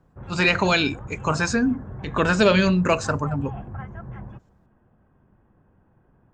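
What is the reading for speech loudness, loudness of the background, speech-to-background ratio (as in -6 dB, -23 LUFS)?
-21.5 LUFS, -37.0 LUFS, 15.5 dB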